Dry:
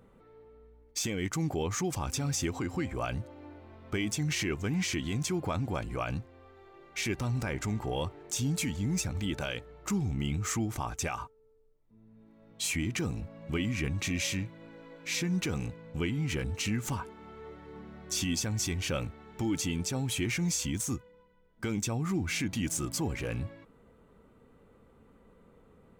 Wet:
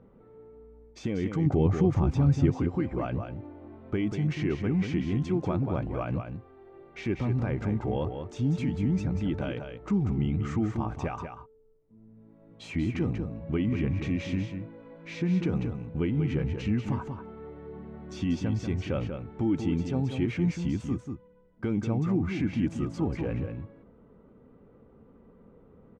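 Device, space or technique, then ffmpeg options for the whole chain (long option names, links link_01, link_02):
phone in a pocket: -filter_complex "[0:a]asettb=1/sr,asplit=3[link_01][link_02][link_03];[link_01]atrim=end=1.464[link_04];[link_02]atrim=start=1.46:end=2.5,asetpts=PTS-STARTPTS,afade=type=in:duration=0.004:curve=qsin,afade=type=out:start_time=1.036:duration=0.004:curve=qsin,lowshelf=frequency=230:gain=9.5[link_05];[link_03]atrim=start=2.496[link_06];[link_04][link_05]acrossfade=duration=0.004:curve1=hsin:curve2=qsin[link_07];[link_07][link_06]acrossfade=duration=0.004:curve1=qsin:curve2=hsin,lowpass=3800,equalizer=frequency=250:width_type=o:width=2.9:gain=5,highshelf=frequency=2000:gain=-11,aecho=1:1:189:0.447"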